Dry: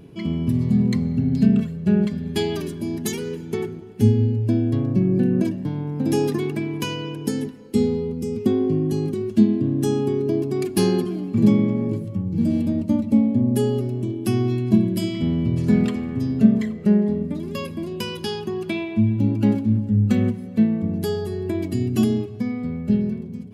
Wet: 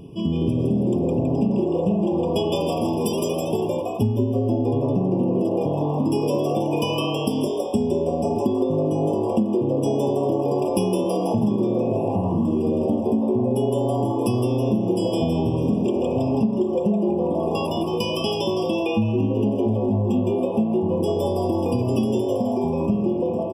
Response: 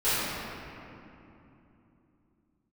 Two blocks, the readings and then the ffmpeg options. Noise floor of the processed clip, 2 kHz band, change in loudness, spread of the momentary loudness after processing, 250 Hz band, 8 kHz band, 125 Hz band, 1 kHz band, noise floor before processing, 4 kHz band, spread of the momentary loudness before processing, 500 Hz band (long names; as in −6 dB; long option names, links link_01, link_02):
−25 dBFS, −3.0 dB, −0.5 dB, 2 LU, −2.0 dB, −2.0 dB, −3.0 dB, +9.5 dB, −34 dBFS, +2.0 dB, 9 LU, +4.5 dB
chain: -filter_complex "[0:a]asplit=8[link_01][link_02][link_03][link_04][link_05][link_06][link_07][link_08];[link_02]adelay=162,afreqshift=150,volume=-3.5dB[link_09];[link_03]adelay=324,afreqshift=300,volume=-9.3dB[link_10];[link_04]adelay=486,afreqshift=450,volume=-15.2dB[link_11];[link_05]adelay=648,afreqshift=600,volume=-21dB[link_12];[link_06]adelay=810,afreqshift=750,volume=-26.9dB[link_13];[link_07]adelay=972,afreqshift=900,volume=-32.7dB[link_14];[link_08]adelay=1134,afreqshift=1050,volume=-38.6dB[link_15];[link_01][link_09][link_10][link_11][link_12][link_13][link_14][link_15]amix=inputs=8:normalize=0,acompressor=threshold=-22dB:ratio=6,afftfilt=real='re*eq(mod(floor(b*sr/1024/1200),2),0)':imag='im*eq(mod(floor(b*sr/1024/1200),2),0)':win_size=1024:overlap=0.75,volume=4dB"